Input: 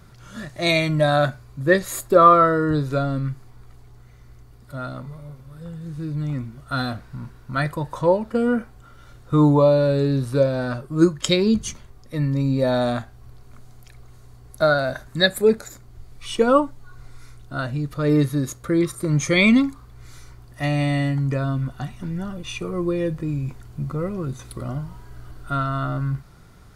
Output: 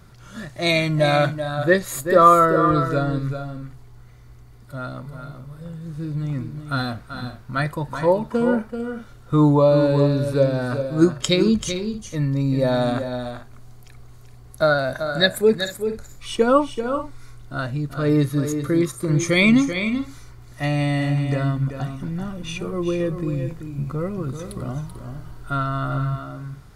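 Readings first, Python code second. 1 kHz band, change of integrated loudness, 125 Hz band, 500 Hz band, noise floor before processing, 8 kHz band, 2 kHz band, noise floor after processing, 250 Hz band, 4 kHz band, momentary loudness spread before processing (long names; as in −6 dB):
+0.5 dB, 0.0 dB, +0.5 dB, +0.5 dB, −47 dBFS, +0.5 dB, +0.5 dB, −45 dBFS, +0.5 dB, +0.5 dB, 17 LU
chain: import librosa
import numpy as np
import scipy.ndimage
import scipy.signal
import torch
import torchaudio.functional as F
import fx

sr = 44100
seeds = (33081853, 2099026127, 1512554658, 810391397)

y = fx.echo_multitap(x, sr, ms=(385, 441), db=(-8.5, -16.5))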